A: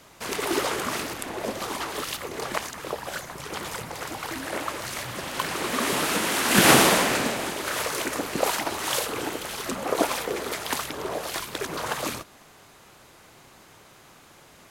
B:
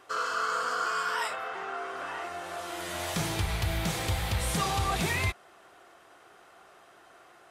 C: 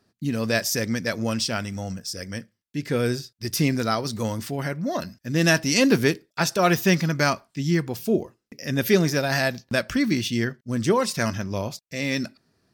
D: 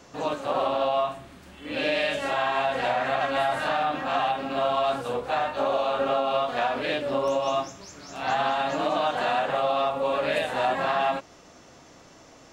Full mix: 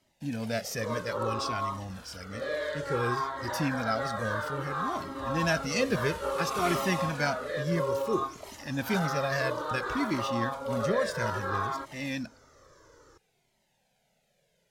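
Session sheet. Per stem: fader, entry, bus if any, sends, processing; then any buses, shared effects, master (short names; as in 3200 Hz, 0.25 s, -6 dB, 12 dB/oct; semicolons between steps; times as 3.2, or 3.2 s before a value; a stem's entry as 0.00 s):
-12.0 dB, 0.00 s, no send, fixed phaser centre 310 Hz, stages 6; hard clip -9 dBFS, distortion -36 dB
-16.5 dB, 1.80 s, no send, dry
-3.5 dB, 0.00 s, no send, dry
+2.0 dB, 0.65 s, no send, fixed phaser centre 720 Hz, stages 6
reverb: off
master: high shelf 4800 Hz -6.5 dB; cascading flanger falling 0.59 Hz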